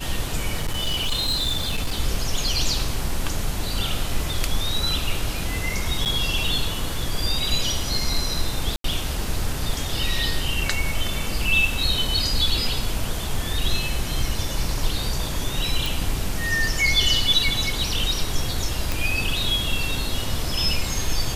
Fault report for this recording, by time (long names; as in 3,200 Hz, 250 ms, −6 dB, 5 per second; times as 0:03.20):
0:00.57–0:02.00: clipping −19 dBFS
0:06.05–0:06.06: drop-out 8.5 ms
0:08.76–0:08.84: drop-out 83 ms
0:15.86: click
0:18.92: click